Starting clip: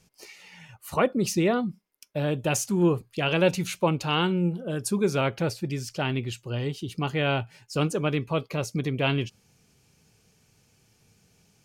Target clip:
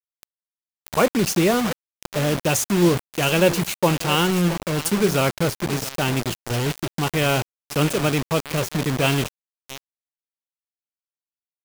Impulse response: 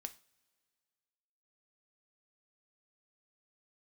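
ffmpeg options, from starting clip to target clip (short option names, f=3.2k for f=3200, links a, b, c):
-af "equalizer=f=13k:w=1.4:g=4.5,aecho=1:1:672:0.2,acrusher=bits=4:mix=0:aa=0.000001,volume=4.5dB"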